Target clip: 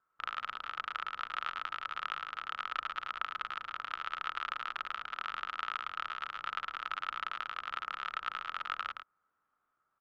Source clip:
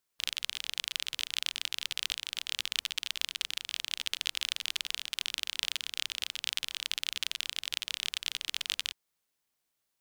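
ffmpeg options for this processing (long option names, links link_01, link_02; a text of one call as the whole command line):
ffmpeg -i in.wav -af "lowpass=frequency=1300:width_type=q:width=11,aecho=1:1:108:0.501" out.wav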